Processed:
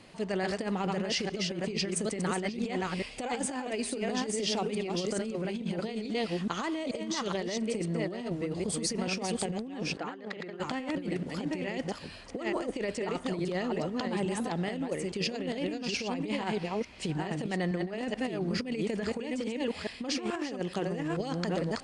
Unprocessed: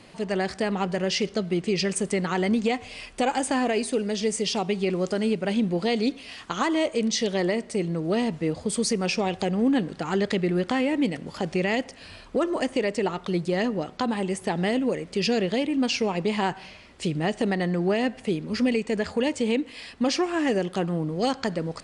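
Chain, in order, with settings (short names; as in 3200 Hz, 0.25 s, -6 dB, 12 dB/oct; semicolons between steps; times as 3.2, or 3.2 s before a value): reverse delay 0.432 s, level -3 dB; negative-ratio compressor -25 dBFS, ratio -0.5; 9.97–10.6 band-pass 1100 Hz, Q 0.58; gain -6.5 dB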